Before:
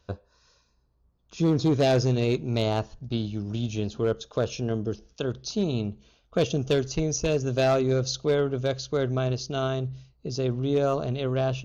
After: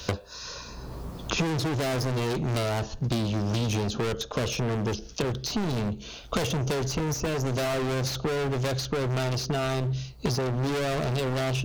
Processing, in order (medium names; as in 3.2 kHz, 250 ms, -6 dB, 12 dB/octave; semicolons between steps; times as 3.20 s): overload inside the chain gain 34.5 dB; three bands compressed up and down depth 100%; trim +8 dB